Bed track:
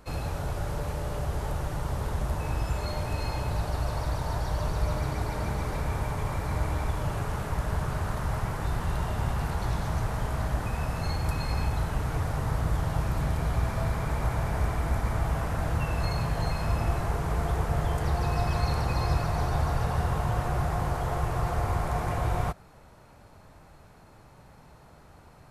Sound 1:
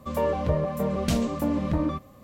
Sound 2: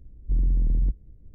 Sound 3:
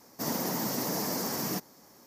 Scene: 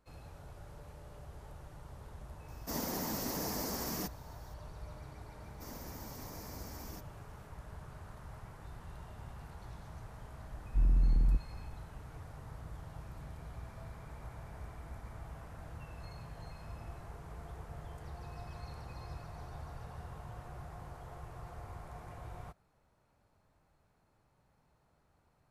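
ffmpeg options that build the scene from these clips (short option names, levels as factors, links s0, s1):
-filter_complex "[3:a]asplit=2[s0][s1];[0:a]volume=0.106[s2];[s0]atrim=end=2.06,asetpts=PTS-STARTPTS,volume=0.501,afade=t=in:d=0.004:c=hsin,afade=t=out:st=2.056:d=0.004:c=hsin,adelay=2480[s3];[s1]atrim=end=2.06,asetpts=PTS-STARTPTS,volume=0.133,afade=t=in:d=0.004:c=hsin,afade=t=out:st=2.056:d=0.004:c=hsin,adelay=238581S[s4];[2:a]atrim=end=1.34,asetpts=PTS-STARTPTS,volume=0.562,afade=t=in:d=0.004:c=hsin,afade=t=out:st=1.336:d=0.004:c=hsin,adelay=10460[s5];[s2][s3][s4][s5]amix=inputs=4:normalize=0"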